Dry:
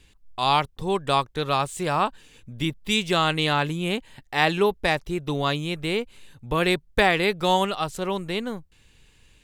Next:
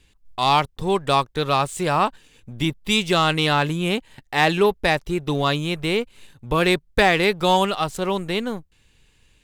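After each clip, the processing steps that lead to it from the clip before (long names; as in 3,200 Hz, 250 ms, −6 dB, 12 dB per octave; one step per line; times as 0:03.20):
leveller curve on the samples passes 1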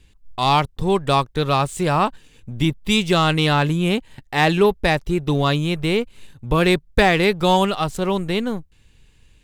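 low-shelf EQ 260 Hz +7 dB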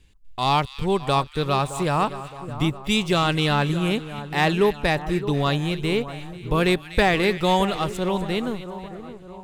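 echo with a time of its own for lows and highs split 1,500 Hz, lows 617 ms, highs 245 ms, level −13 dB
level −3.5 dB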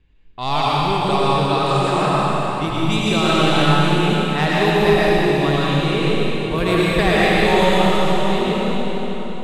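low-pass that shuts in the quiet parts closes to 2,300 Hz, open at −16 dBFS
comb and all-pass reverb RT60 3.6 s, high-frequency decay 1×, pre-delay 60 ms, DRR −7.5 dB
level −2.5 dB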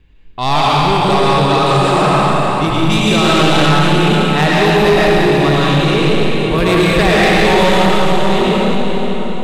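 soft clipping −14.5 dBFS, distortion −12 dB
level +8.5 dB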